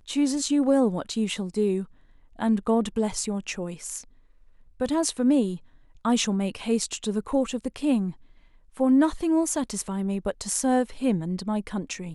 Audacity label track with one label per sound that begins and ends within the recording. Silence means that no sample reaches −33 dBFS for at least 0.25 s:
2.390000	4.010000	sound
4.800000	5.560000	sound
6.050000	8.110000	sound